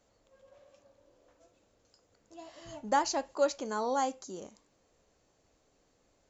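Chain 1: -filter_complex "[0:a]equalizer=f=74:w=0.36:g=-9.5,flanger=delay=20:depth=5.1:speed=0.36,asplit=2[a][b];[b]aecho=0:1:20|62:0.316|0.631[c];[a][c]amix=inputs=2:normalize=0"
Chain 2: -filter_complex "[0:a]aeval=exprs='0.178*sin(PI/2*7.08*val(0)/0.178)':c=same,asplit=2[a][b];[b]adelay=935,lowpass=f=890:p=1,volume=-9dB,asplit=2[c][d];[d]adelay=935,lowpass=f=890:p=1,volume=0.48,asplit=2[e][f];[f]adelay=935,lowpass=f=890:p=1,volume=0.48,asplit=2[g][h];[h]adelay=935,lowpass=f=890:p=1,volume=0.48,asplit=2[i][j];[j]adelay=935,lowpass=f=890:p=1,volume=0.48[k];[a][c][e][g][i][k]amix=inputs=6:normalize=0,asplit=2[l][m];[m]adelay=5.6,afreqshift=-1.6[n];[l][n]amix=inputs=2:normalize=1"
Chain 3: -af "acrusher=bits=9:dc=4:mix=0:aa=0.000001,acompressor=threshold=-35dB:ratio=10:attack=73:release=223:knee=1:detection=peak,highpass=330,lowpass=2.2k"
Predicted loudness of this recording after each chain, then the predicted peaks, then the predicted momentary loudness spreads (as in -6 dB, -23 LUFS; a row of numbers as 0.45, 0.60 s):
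-34.5, -24.5, -39.0 LUFS; -17.0, -10.5, -18.5 dBFS; 19, 21, 17 LU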